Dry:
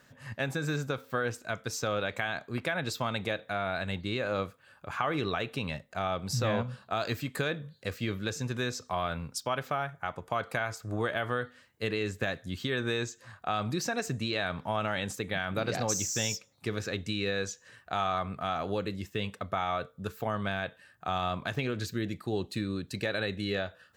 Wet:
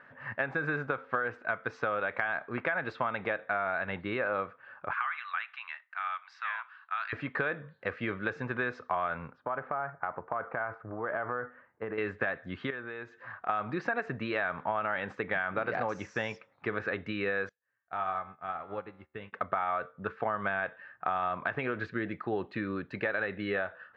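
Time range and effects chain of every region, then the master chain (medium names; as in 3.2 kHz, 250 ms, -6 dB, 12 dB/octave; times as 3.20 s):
4.93–7.13 s: Bessel high-pass 1.8 kHz, order 8 + distance through air 64 m
9.33–11.98 s: low-pass 1.3 kHz + compression, threshold -33 dBFS
12.70–13.49 s: low-pass 9.5 kHz + compression 4:1, threshold -42 dBFS
17.49–19.33 s: bass shelf 120 Hz +10 dB + feedback comb 76 Hz, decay 1 s, mix 70% + upward expansion 2.5:1, over -54 dBFS
whole clip: low-pass 1.7 kHz 24 dB/octave; tilt EQ +4.5 dB/octave; compression, threshold -35 dBFS; trim +8 dB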